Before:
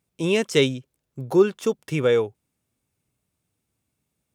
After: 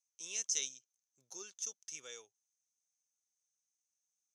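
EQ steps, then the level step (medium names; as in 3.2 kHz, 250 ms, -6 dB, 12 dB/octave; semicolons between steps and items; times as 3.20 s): band-pass filter 6.2 kHz, Q 16; +10.0 dB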